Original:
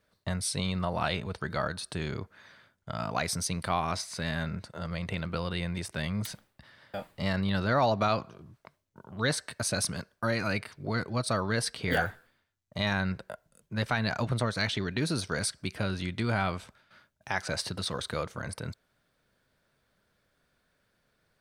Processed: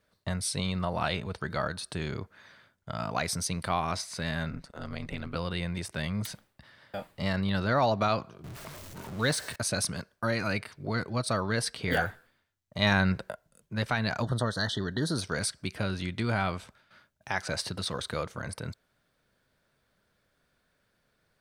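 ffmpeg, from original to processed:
-filter_complex "[0:a]asettb=1/sr,asplit=3[a][b][c];[a]atrim=end=4.504[d];[b]atrim=start=4.5:end=5.35,asetpts=PTS-STARTPTS,afade=t=in:d=0.004:c=qsin,afade=t=out:st=0.846:d=0.004:c=qsin,aeval=exprs='val(0)*sin(2*PI*68*n/s)':c=same[e];[c]atrim=start=5.346[f];[d][e]acrossfade=d=0.004:c1=hsin:c2=qsin[g];[g][f]acrossfade=d=0.004:c1=qsin:c2=hsin,asettb=1/sr,asplit=3[h][i][j];[h]atrim=end=8.444[k];[i]atrim=start=8.44:end=9.56,asetpts=PTS-STARTPTS,afade=t=in:d=0.004:c=qsin,afade=t=out:st=1.116:d=0.004:c=qsin,aeval=exprs='val(0)+0.5*0.0119*sgn(val(0))':c=same[l];[j]atrim=start=9.556[m];[k][l]acrossfade=d=0.004:c1=hsin:c2=qsin[n];[n][m]acrossfade=d=0.004:c1=qsin:c2=hsin,asettb=1/sr,asplit=3[o][p][q];[o]atrim=end=14.224[r];[p]atrim=start=14.22:end=15.18,asetpts=PTS-STARTPTS,afade=t=in:d=0.004:c=qsin,afade=t=out:st=0.956:d=0.004:c=qsin,asuperstop=centerf=2400:order=20:qfactor=2.3[s];[q]atrim=start=15.176[t];[r][s]acrossfade=d=0.004:c1=hsin:c2=qsin[u];[u][t]acrossfade=d=0.004:c1=qsin:c2=hsin,asplit=3[v][w][x];[v]atrim=end=12.822[y];[w]atrim=start=12.818:end=13.312,asetpts=PTS-STARTPTS,volume=5dB[z];[x]atrim=start=13.308[aa];[y][z]acrossfade=d=0.004:c1=hsin:c2=hsin[ab];[ab][aa]acrossfade=d=0.004:c1=hsin:c2=hsin"

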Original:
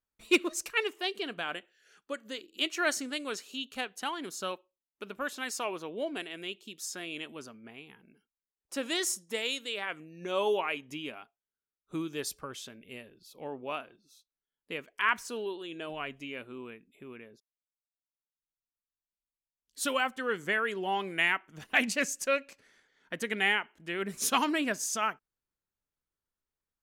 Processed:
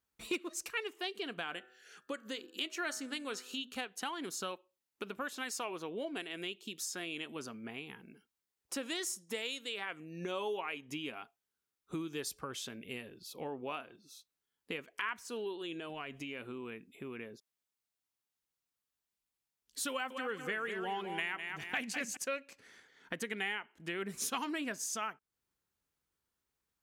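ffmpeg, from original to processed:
-filter_complex "[0:a]asettb=1/sr,asplit=3[a][b][c];[a]atrim=end=1.504[d];[b]atrim=start=1.5:end=3.73,asetpts=PTS-STARTPTS,afade=t=in:d=0.004:c=qsin,afade=t=out:st=2.226:d=0.004:c=qsin,bandreject=f=125.9:t=h:w=4,bandreject=f=251.8:t=h:w=4,bandreject=f=377.7:t=h:w=4,bandreject=f=503.6:t=h:w=4,bandreject=f=629.5:t=h:w=4,bandreject=f=755.4:t=h:w=4,bandreject=f=881.3:t=h:w=4,bandreject=f=1.0072k:t=h:w=4,bandreject=f=1.1331k:t=h:w=4,bandreject=f=1.259k:t=h:w=4,bandreject=f=1.3849k:t=h:w=4,bandreject=f=1.5108k:t=h:w=4,bandreject=f=1.6367k:t=h:w=4,bandreject=f=1.7626k:t=h:w=4[e];[c]atrim=start=3.726[f];[d][e]acrossfade=d=0.004:c1=hsin:c2=qsin[g];[g][f]acrossfade=d=0.004:c1=qsin:c2=hsin,asettb=1/sr,asplit=3[h][i][j];[h]atrim=end=15.794[k];[i]atrim=start=15.79:end=17.2,asetpts=PTS-STARTPTS,afade=t=in:d=0.004:c=qsin,afade=t=out:st=1.406:d=0.004:c=qsin,acompressor=threshold=-44dB:ratio=2.5:attack=3.2:release=140:knee=1:detection=peak[l];[j]atrim=start=17.196[m];[k][l]acrossfade=d=0.004:c1=hsin:c2=qsin[n];[n][m]acrossfade=d=0.004:c1=qsin:c2=hsin,asettb=1/sr,asplit=3[o][p][q];[o]atrim=end=19.904[r];[p]atrim=start=19.9:end=22.17,asetpts=PTS-STARTPTS,afade=t=in:d=0.004:c=qsin,afade=t=out:st=2.266:d=0.004:c=qsin,aecho=1:1:202|404|606|808:0.355|0.117|0.0386|0.0128,atrim=end_sample=100107[s];[q]atrim=start=22.166[t];[r][s]acrossfade=d=0.004:c1=hsin:c2=qsin[u];[u][t]acrossfade=d=0.004:c1=qsin:c2=hsin,highpass=49,bandreject=f=600:w=12,acompressor=threshold=-45dB:ratio=3,volume=5.5dB"

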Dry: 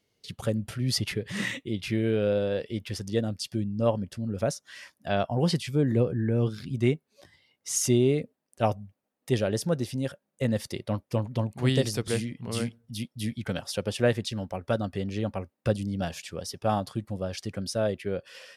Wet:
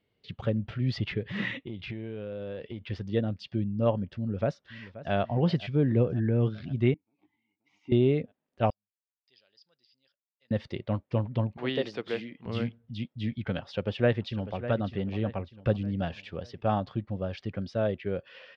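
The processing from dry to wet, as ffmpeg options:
-filter_complex "[0:a]asettb=1/sr,asplit=3[a][b][c];[a]atrim=end=1.574[d];[b]atrim=start=1.57:end=2.86,asetpts=PTS-STARTPTS,afade=t=in:d=0.004:c=qsin,afade=t=out:st=1.286:d=0.004:c=qsin,acompressor=threshold=-32dB:ratio=10:attack=3.2:release=140:knee=1:detection=peak[e];[c]atrim=start=2.856[f];[d][e]acrossfade=d=0.004:c1=hsin:c2=qsin[g];[g][f]acrossfade=d=0.004:c1=qsin:c2=hsin,asplit=2[h][i];[i]afade=t=in:st=4.09:d=0.01,afade=t=out:st=5.13:d=0.01,aecho=0:1:530|1060|1590|2120|2650|3180:0.158489|0.0950936|0.0570562|0.0342337|0.0205402|0.0123241[j];[h][j]amix=inputs=2:normalize=0,asettb=1/sr,asplit=3[k][l][m];[k]atrim=end=6.944[n];[l]atrim=start=6.94:end=7.92,asetpts=PTS-STARTPTS,afade=t=in:d=0.004:c=qsin,afade=t=out:st=0.976:d=0.004:c=qsin,asplit=3[o][p][q];[o]bandpass=f=300:t=q:w=8,volume=0dB[r];[p]bandpass=f=870:t=q:w=8,volume=-6dB[s];[q]bandpass=f=2.24k:t=q:w=8,volume=-9dB[t];[r][s][t]amix=inputs=3:normalize=0[u];[m]atrim=start=7.916[v];[n][u]acrossfade=d=0.004:c1=hsin:c2=qsin[w];[w][v]acrossfade=d=0.004:c1=qsin:c2=hsin,asettb=1/sr,asplit=3[x][y][z];[x]atrim=end=8.704[aa];[y]atrim=start=8.7:end=10.51,asetpts=PTS-STARTPTS,afade=t=in:d=0.004:c=qsin,afade=t=out:st=1.806:d=0.004:c=qsin,bandpass=f=4.9k:t=q:w=15[ab];[z]atrim=start=10.506[ac];[aa][ab]acrossfade=d=0.004:c1=hsin:c2=qsin[ad];[ad][ac]acrossfade=d=0.004:c1=qsin:c2=hsin,asettb=1/sr,asplit=3[ae][af][ag];[ae]atrim=end=11.574[ah];[af]atrim=start=11.57:end=12.46,asetpts=PTS-STARTPTS,afade=t=in:d=0.004:c=qsin,afade=t=out:st=0.886:d=0.004:c=qsin,highpass=320[ai];[ag]atrim=start=12.456[aj];[ah][ai]acrossfade=d=0.004:c1=hsin:c2=qsin[ak];[ak][aj]acrossfade=d=0.004:c1=qsin:c2=hsin,asplit=2[al][am];[am]afade=t=in:st=13.6:d=0.01,afade=t=out:st=14.65:d=0.01,aecho=0:1:600|1200|1800|2400:0.237137|0.106712|0.0480203|0.0216091[an];[al][an]amix=inputs=2:normalize=0,lowpass=f=3.5k:w=0.5412,lowpass=f=3.5k:w=1.3066,lowshelf=f=170:g=3,volume=-1.5dB"

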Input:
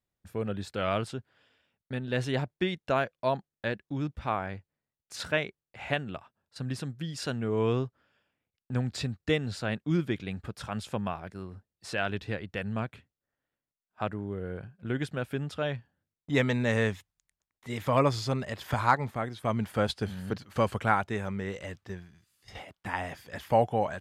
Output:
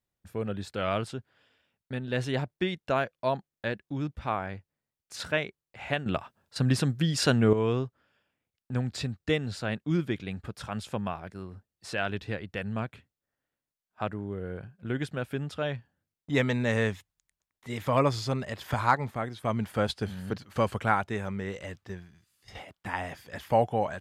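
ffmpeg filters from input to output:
-filter_complex "[0:a]asplit=3[a][b][c];[a]atrim=end=6.062[d];[b]atrim=start=6.058:end=7.532,asetpts=PTS-STARTPTS,volume=9.5dB[e];[c]atrim=start=7.528[f];[d][e]acrossfade=d=0.004:c1=hsin:c2=hsin[g];[g][f]acrossfade=d=0.004:c1=hsin:c2=hsin"

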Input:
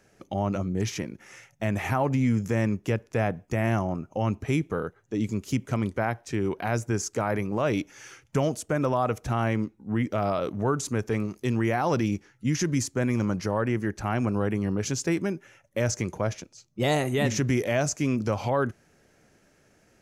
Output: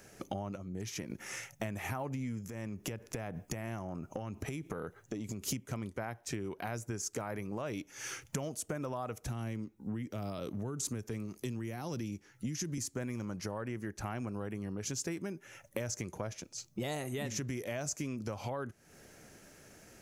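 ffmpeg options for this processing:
-filter_complex "[0:a]asettb=1/sr,asplit=3[a][b][c];[a]atrim=end=2.494[d];[b]atrim=start=2.49:end=5.5,asetpts=PTS-STARTPTS,afade=t=in:d=0.004:c=qsin,afade=t=out:st=3.006:d=0.004:c=qsin,acompressor=threshold=-32dB:ratio=12:attack=3.2:release=140:knee=1:detection=peak[e];[c]atrim=start=5.496[f];[d][e]acrossfade=d=0.004:c1=hsin:c2=qsin[g];[g][f]acrossfade=d=0.004:c1=qsin:c2=hsin,asettb=1/sr,asplit=3[h][i][j];[h]atrim=end=9.244[k];[i]atrim=start=9.24:end=12.78,asetpts=PTS-STARTPTS,afade=t=in:d=0.004:c=qsin,afade=t=out:st=3.536:d=0.004:c=qsin,acrossover=split=370|3000[l][m][n];[m]acompressor=threshold=-43dB:ratio=2:attack=3.2:release=140:knee=2.83:detection=peak[o];[l][o][n]amix=inputs=3:normalize=0[p];[j]atrim=start=12.776[q];[k][p]acrossfade=d=0.004:c1=hsin:c2=qsin[r];[r][q]acrossfade=d=0.004:c1=qsin:c2=hsin,asplit=3[s][t][u];[s]atrim=end=0.562[v];[t]atrim=start=0.558:end=1.102,asetpts=PTS-STARTPTS,volume=-8.5dB[w];[u]atrim=start=1.098[x];[v][w]acrossfade=d=0.004:c1=hsin:c2=hsin[y];[y][x]acrossfade=d=0.004:c1=hsin:c2=hsin,acompressor=threshold=-40dB:ratio=8,highshelf=f=7.7k:g=11,volume=4dB"

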